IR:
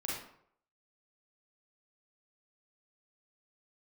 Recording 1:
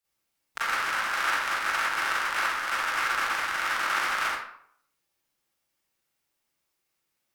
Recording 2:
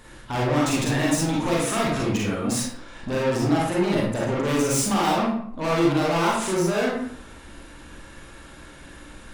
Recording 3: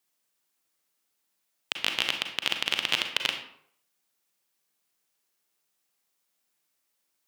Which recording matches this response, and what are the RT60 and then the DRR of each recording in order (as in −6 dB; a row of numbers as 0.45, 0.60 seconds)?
2; 0.65, 0.65, 0.65 seconds; −10.5, −5.0, 4.5 decibels